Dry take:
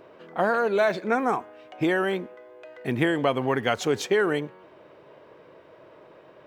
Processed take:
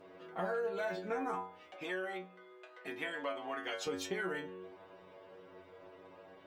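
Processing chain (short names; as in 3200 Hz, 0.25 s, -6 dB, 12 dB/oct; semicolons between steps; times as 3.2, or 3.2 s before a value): metallic resonator 91 Hz, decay 0.42 s, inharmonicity 0.002; compressor 2.5:1, threshold -44 dBFS, peak gain reduction 11.5 dB; 1.76–3.87 weighting filter A; gain +6 dB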